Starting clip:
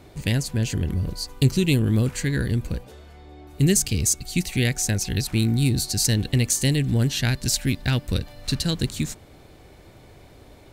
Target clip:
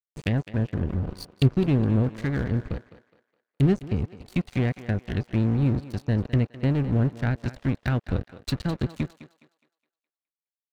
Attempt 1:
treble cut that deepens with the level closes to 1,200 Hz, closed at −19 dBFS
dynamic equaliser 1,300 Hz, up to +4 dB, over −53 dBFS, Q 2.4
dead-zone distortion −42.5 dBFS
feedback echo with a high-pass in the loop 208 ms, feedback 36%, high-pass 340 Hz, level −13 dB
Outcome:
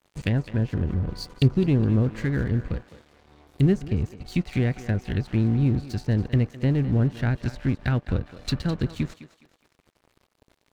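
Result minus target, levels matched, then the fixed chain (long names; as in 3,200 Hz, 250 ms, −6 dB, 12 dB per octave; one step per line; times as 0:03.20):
dead-zone distortion: distortion −7 dB
treble cut that deepens with the level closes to 1,200 Hz, closed at −19 dBFS
dynamic equaliser 1,300 Hz, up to +4 dB, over −53 dBFS, Q 2.4
dead-zone distortion −33 dBFS
feedback echo with a high-pass in the loop 208 ms, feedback 36%, high-pass 340 Hz, level −13 dB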